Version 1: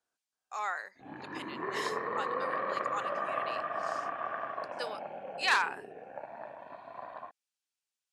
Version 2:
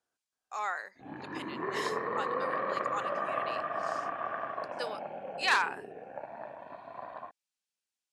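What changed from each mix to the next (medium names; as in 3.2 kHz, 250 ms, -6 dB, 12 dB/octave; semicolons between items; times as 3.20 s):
master: add bass shelf 490 Hz +3.5 dB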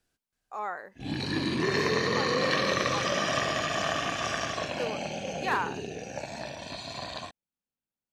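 background: remove low-pass 1.2 kHz 24 dB/octave; master: remove frequency weighting ITU-R 468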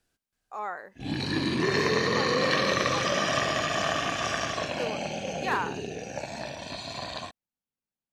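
reverb: on, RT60 0.60 s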